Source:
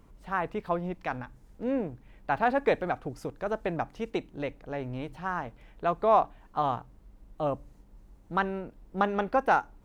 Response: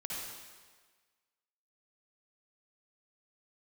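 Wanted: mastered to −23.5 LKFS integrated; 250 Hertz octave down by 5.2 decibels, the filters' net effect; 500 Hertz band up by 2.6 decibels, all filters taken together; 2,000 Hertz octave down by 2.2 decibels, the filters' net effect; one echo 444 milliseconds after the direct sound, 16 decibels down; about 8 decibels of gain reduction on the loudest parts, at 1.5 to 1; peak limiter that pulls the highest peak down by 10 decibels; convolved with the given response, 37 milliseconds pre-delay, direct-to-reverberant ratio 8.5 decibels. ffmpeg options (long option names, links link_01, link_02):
-filter_complex "[0:a]equalizer=frequency=250:width_type=o:gain=-9,equalizer=frequency=500:width_type=o:gain=5.5,equalizer=frequency=2000:width_type=o:gain=-3.5,acompressor=threshold=-38dB:ratio=1.5,alimiter=level_in=1dB:limit=-24dB:level=0:latency=1,volume=-1dB,aecho=1:1:444:0.158,asplit=2[link_01][link_02];[1:a]atrim=start_sample=2205,adelay=37[link_03];[link_02][link_03]afir=irnorm=-1:irlink=0,volume=-10dB[link_04];[link_01][link_04]amix=inputs=2:normalize=0,volume=14dB"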